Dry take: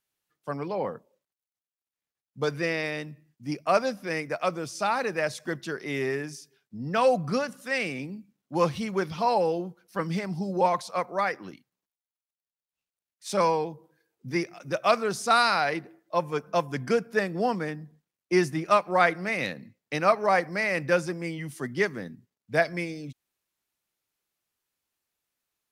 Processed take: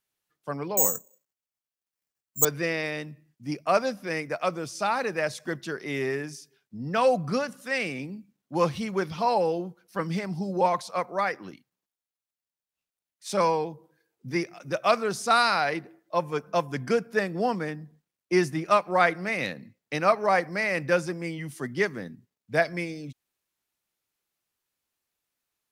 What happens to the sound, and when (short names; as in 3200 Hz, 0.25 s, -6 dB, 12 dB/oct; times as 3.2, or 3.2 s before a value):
0.77–2.45 careless resampling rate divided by 6×, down filtered, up zero stuff